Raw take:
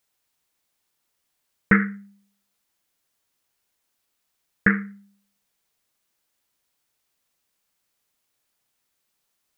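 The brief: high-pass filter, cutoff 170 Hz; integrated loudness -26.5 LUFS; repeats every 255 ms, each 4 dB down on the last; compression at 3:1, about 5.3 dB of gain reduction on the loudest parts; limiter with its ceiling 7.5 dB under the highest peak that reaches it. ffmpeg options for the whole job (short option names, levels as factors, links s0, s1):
-af "highpass=170,acompressor=threshold=0.112:ratio=3,alimiter=limit=0.224:level=0:latency=1,aecho=1:1:255|510|765|1020|1275|1530|1785|2040|2295:0.631|0.398|0.25|0.158|0.0994|0.0626|0.0394|0.0249|0.0157,volume=2.24"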